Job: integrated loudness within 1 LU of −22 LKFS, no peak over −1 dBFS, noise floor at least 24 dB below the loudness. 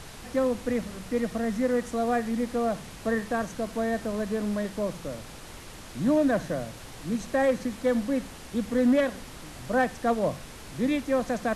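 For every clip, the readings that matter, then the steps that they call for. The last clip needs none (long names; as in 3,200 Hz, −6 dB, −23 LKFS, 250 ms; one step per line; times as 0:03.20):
share of clipped samples 0.3%; peaks flattened at −16.5 dBFS; background noise floor −44 dBFS; target noise floor −52 dBFS; integrated loudness −28.0 LKFS; sample peak −16.5 dBFS; target loudness −22.0 LKFS
→ clipped peaks rebuilt −16.5 dBFS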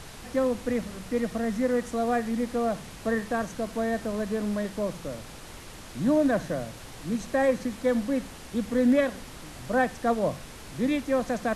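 share of clipped samples 0.0%; background noise floor −44 dBFS; target noise floor −52 dBFS
→ noise reduction from a noise print 8 dB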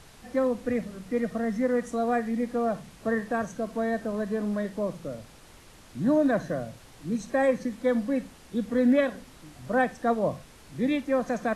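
background noise floor −52 dBFS; integrated loudness −28.0 LKFS; sample peak −12.0 dBFS; target loudness −22.0 LKFS
→ level +6 dB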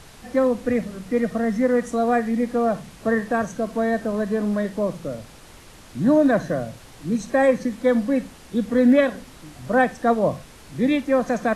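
integrated loudness −22.0 LKFS; sample peak −6.0 dBFS; background noise floor −46 dBFS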